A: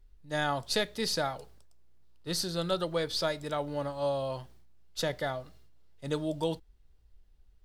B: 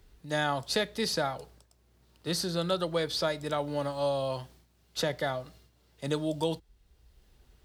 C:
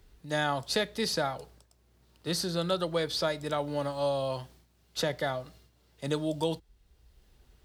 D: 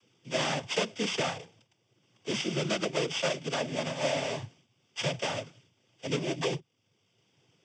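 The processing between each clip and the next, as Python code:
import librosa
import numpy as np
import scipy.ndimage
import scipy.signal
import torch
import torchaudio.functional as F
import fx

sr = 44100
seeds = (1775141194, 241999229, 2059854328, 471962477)

y1 = scipy.signal.sosfilt(scipy.signal.butter(2, 44.0, 'highpass', fs=sr, output='sos'), x)
y1 = fx.band_squash(y1, sr, depth_pct=40)
y1 = y1 * 10.0 ** (1.5 / 20.0)
y2 = y1
y3 = np.r_[np.sort(y2[:len(y2) // 16 * 16].reshape(-1, 16), axis=1).ravel(), y2[len(y2) // 16 * 16:]]
y3 = fx.noise_vocoder(y3, sr, seeds[0], bands=16)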